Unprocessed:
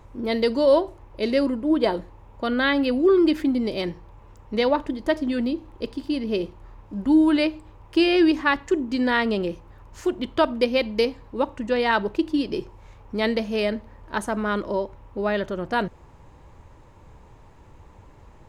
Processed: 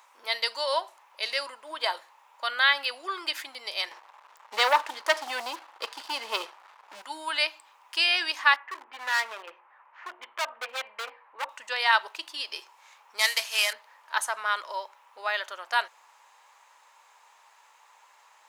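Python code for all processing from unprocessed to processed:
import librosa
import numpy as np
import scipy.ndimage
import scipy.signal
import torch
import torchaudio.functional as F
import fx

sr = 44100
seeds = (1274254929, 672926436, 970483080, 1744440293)

y = fx.chain(x, sr, fx.highpass(hz=98.0, slope=24),
    fx.tilt_eq(slope=-2.5),
    fx.leveller(passes=2), at=(3.91, 7.02))
y = fx.chain(y, sr, fx.lowpass(hz=2200.0, slope=24),
    fx.hum_notches(base_hz=60, count=9),
    fx.clip_hard(threshold_db=-22.5), at=(8.56, 11.49))
y = fx.chain(y, sr, fx.cvsd(bps=64000),
    fx.tilt_shelf(db=-6.5, hz=910.0), at=(13.19, 13.73))
y = scipy.signal.sosfilt(scipy.signal.butter(4, 840.0, 'highpass', fs=sr, output='sos'), y)
y = fx.high_shelf(y, sr, hz=2900.0, db=7.5)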